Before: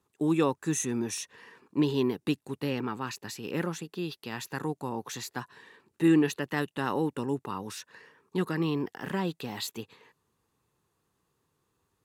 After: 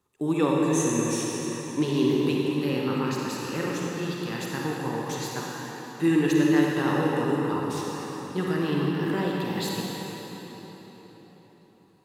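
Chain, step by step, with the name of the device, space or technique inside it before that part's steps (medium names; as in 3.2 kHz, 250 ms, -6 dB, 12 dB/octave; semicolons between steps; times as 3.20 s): cathedral (reverberation RT60 4.6 s, pre-delay 36 ms, DRR -3.5 dB)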